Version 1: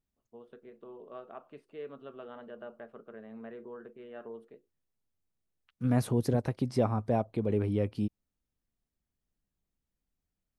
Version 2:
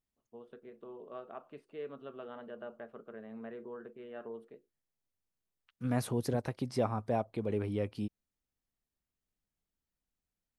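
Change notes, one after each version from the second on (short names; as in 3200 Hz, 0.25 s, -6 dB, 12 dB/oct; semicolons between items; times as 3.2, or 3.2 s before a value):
second voice: add low shelf 490 Hz -6.5 dB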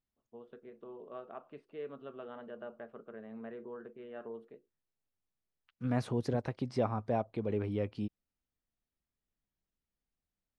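master: add air absorption 90 m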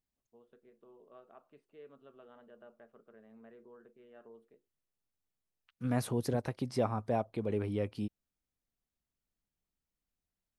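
first voice -11.0 dB; master: remove air absorption 90 m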